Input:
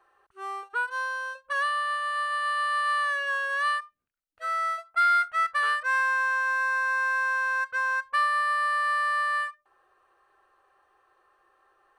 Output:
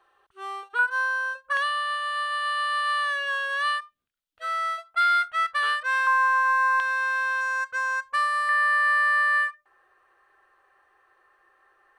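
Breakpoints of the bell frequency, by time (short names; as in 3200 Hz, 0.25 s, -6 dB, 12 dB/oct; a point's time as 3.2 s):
bell +8.5 dB 0.57 oct
3400 Hz
from 0.79 s 1400 Hz
from 1.57 s 3400 Hz
from 6.07 s 1100 Hz
from 6.8 s 3400 Hz
from 7.41 s 6800 Hz
from 8.49 s 1900 Hz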